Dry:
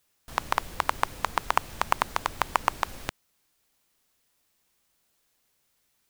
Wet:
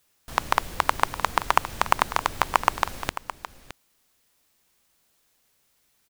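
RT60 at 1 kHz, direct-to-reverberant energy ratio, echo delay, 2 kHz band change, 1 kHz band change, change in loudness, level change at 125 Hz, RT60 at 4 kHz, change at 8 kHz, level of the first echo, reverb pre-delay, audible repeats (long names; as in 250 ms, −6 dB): no reverb audible, no reverb audible, 616 ms, +4.0 dB, +4.0 dB, +4.0 dB, +4.5 dB, no reverb audible, +4.0 dB, −13.0 dB, no reverb audible, 1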